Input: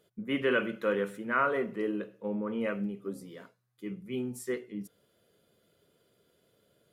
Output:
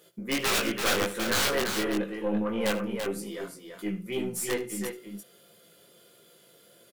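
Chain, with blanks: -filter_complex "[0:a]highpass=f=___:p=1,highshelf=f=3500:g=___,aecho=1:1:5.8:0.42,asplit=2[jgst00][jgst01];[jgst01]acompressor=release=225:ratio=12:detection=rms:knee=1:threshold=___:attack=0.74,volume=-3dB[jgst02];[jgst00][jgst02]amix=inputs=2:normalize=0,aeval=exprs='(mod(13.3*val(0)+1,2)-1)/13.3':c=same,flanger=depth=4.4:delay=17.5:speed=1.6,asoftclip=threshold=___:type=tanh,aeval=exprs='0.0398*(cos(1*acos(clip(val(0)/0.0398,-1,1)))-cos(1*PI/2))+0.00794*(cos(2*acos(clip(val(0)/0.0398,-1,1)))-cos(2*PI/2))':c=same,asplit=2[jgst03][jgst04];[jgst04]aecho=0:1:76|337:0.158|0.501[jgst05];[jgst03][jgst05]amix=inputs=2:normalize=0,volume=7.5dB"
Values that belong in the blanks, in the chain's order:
260, 7.5, -43dB, -28dB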